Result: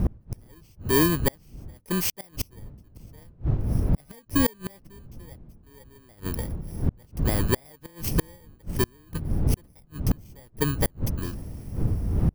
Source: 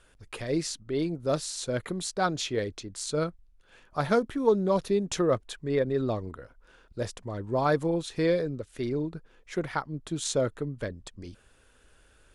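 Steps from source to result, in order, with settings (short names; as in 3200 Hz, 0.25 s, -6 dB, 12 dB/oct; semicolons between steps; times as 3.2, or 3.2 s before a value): FFT order left unsorted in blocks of 32 samples; wind noise 120 Hz -24 dBFS; flipped gate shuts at -19 dBFS, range -35 dB; gain +8.5 dB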